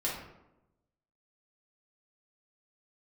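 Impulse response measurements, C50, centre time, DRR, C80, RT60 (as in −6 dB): 3.0 dB, 46 ms, −6.0 dB, 6.5 dB, 0.95 s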